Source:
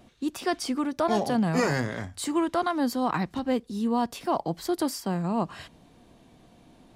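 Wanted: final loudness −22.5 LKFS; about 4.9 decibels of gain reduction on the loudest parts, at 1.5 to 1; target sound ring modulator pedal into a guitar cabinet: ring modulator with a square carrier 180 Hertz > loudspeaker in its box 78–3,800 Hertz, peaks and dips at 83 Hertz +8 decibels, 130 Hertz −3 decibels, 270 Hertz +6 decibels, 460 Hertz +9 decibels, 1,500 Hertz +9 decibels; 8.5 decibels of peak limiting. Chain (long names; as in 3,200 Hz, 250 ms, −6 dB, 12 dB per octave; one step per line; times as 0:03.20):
downward compressor 1.5 to 1, threshold −34 dBFS
brickwall limiter −27.5 dBFS
ring modulator with a square carrier 180 Hz
loudspeaker in its box 78–3,800 Hz, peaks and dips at 83 Hz +8 dB, 130 Hz −3 dB, 270 Hz +6 dB, 460 Hz +9 dB, 1,500 Hz +9 dB
level +11 dB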